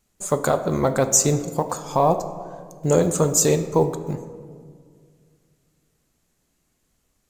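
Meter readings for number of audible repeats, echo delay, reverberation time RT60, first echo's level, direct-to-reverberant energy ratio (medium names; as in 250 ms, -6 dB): no echo, no echo, 2.0 s, no echo, 9.5 dB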